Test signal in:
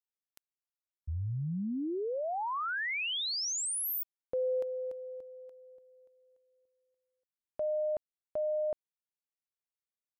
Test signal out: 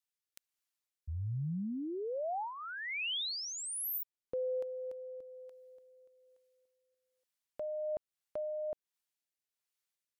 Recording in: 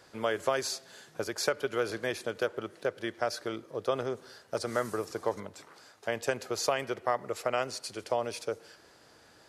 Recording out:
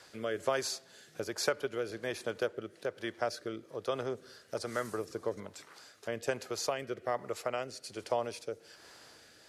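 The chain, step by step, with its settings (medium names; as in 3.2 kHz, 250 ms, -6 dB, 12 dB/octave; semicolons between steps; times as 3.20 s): rotary cabinet horn 1.2 Hz; tape noise reduction on one side only encoder only; trim -1.5 dB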